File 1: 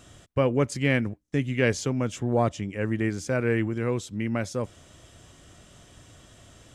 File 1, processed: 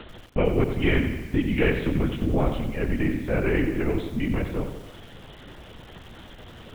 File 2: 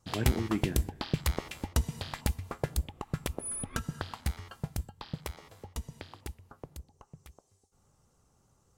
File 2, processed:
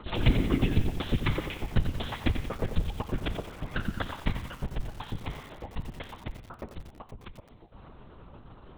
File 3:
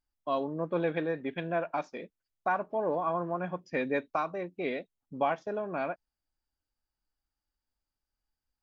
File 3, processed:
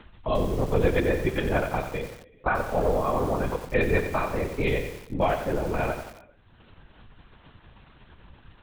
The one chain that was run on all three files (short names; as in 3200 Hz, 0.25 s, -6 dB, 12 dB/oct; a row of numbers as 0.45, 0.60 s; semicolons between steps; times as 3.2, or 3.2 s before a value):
dynamic EQ 920 Hz, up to -8 dB, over -43 dBFS, Q 0.8; upward compressor, threshold -39 dBFS; non-linear reverb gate 0.46 s falling, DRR 11 dB; LPC vocoder at 8 kHz whisper; lo-fi delay 90 ms, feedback 55%, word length 8-bit, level -8.5 dB; normalise peaks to -9 dBFS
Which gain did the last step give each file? +3.0, +4.5, +10.0 dB